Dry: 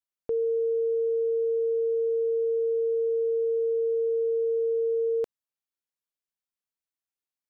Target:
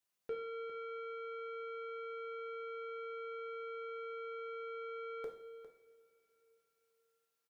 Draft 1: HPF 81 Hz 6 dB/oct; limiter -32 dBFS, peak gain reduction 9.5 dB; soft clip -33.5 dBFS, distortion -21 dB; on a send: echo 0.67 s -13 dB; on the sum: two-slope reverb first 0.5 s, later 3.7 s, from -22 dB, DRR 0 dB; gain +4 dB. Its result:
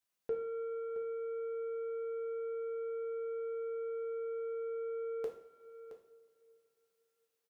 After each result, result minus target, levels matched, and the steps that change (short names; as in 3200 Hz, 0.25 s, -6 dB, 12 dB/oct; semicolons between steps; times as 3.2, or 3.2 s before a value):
echo 0.266 s late; soft clip: distortion -9 dB
change: echo 0.404 s -13 dB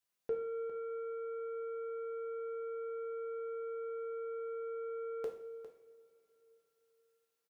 soft clip: distortion -9 dB
change: soft clip -41 dBFS, distortion -12 dB